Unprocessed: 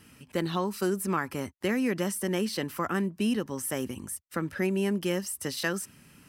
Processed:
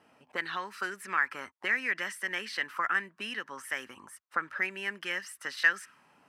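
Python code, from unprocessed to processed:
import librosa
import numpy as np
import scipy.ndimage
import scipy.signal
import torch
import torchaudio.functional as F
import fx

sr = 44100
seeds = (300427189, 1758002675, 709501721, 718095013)

y = fx.high_shelf(x, sr, hz=2200.0, db=7.0)
y = fx.auto_wah(y, sr, base_hz=680.0, top_hz=1800.0, q=3.1, full_db=-25.0, direction='up')
y = y * librosa.db_to_amplitude(7.0)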